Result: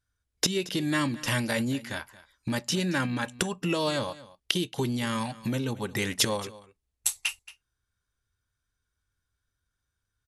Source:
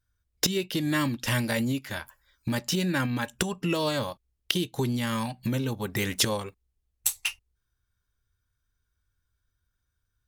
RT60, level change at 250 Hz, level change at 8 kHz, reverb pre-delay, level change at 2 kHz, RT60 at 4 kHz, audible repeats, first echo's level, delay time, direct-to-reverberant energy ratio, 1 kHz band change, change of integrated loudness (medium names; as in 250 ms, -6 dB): no reverb, -1.0 dB, 0.0 dB, no reverb, 0.0 dB, no reverb, 1, -18.5 dB, 226 ms, no reverb, 0.0 dB, -0.5 dB